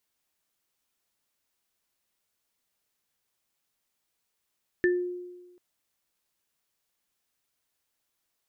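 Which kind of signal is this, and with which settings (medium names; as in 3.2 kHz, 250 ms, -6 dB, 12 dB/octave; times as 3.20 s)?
sine partials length 0.74 s, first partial 357 Hz, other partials 1.77 kHz, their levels -3.5 dB, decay 1.23 s, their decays 0.24 s, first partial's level -19 dB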